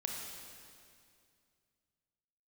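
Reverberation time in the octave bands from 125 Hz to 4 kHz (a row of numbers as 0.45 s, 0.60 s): 2.9 s, 2.6 s, 2.4 s, 2.2 s, 2.2 s, 2.1 s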